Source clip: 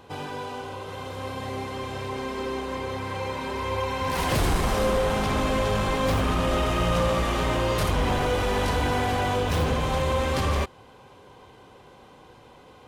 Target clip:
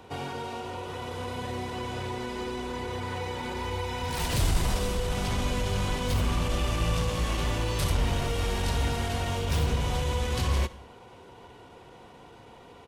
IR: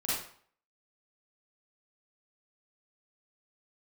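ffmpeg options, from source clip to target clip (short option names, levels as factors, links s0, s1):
-filter_complex "[0:a]acrossover=split=170|3000[s0][s1][s2];[s1]acompressor=threshold=0.0224:ratio=5[s3];[s0][s3][s2]amix=inputs=3:normalize=0,asplit=2[s4][s5];[1:a]atrim=start_sample=2205,asetrate=32193,aresample=44100[s6];[s5][s6]afir=irnorm=-1:irlink=0,volume=0.0631[s7];[s4][s7]amix=inputs=2:normalize=0,asetrate=41625,aresample=44100,atempo=1.05946"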